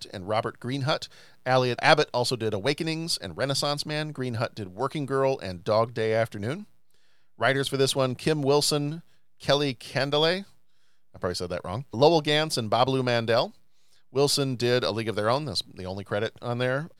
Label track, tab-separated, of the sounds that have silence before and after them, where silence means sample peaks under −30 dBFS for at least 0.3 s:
1.460000	6.560000	sound
7.410000	8.960000	sound
9.440000	10.410000	sound
11.240000	13.470000	sound